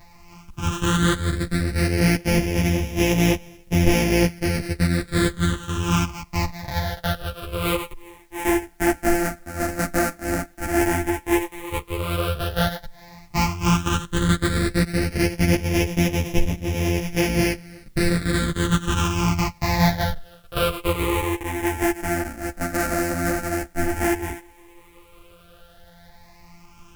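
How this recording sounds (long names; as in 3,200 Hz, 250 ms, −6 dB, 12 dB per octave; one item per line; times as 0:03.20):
a buzz of ramps at a fixed pitch in blocks of 256 samples
phaser sweep stages 8, 0.076 Hz, lowest notch 130–1,300 Hz
a quantiser's noise floor 12 bits, dither triangular
a shimmering, thickened sound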